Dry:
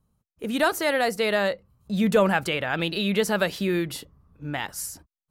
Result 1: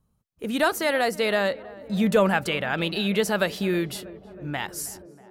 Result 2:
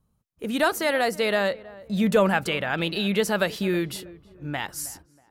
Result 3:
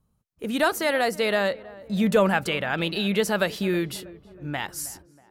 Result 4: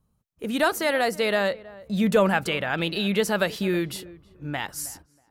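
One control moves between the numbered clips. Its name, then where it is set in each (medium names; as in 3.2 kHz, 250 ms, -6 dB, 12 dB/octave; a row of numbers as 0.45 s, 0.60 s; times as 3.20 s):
tape echo, feedback: 90%, 40%, 60%, 23%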